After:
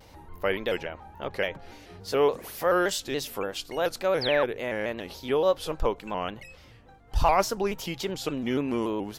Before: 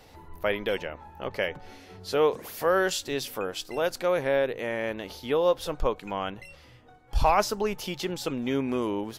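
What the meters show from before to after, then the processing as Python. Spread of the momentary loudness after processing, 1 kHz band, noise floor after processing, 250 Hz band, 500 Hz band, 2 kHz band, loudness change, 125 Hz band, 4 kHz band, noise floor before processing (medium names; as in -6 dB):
12 LU, +0.5 dB, -52 dBFS, +0.5 dB, 0.0 dB, 0.0 dB, 0.0 dB, 0.0 dB, +1.0 dB, -53 dBFS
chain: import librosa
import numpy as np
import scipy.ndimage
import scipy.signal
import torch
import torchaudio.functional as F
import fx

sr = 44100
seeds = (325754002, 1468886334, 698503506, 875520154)

y = fx.add_hum(x, sr, base_hz=50, snr_db=31)
y = fx.spec_paint(y, sr, seeds[0], shape='fall', start_s=4.21, length_s=0.24, low_hz=830.0, high_hz=5800.0, level_db=-31.0)
y = fx.vibrato_shape(y, sr, shape='square', rate_hz=3.5, depth_cents=100.0)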